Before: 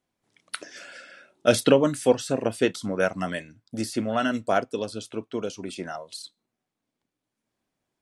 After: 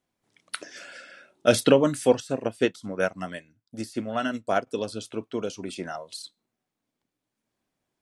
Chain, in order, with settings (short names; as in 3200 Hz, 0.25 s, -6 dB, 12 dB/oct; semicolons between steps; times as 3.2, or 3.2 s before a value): 2.2–4.67 upward expander 1.5:1, over -42 dBFS